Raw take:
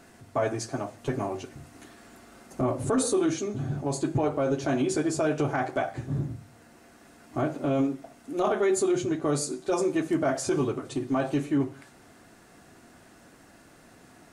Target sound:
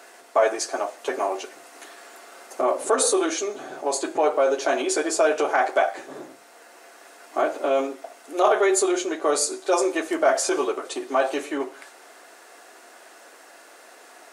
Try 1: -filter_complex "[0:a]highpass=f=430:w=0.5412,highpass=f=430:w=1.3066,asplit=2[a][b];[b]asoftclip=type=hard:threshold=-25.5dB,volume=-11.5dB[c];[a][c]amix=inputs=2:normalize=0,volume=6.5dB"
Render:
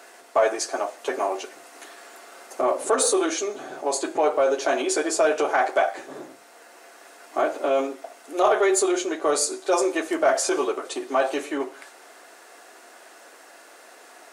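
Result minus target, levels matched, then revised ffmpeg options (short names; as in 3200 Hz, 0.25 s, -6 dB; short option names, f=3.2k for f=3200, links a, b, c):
hard clip: distortion +23 dB
-filter_complex "[0:a]highpass=f=430:w=0.5412,highpass=f=430:w=1.3066,asplit=2[a][b];[b]asoftclip=type=hard:threshold=-18dB,volume=-11.5dB[c];[a][c]amix=inputs=2:normalize=0,volume=6.5dB"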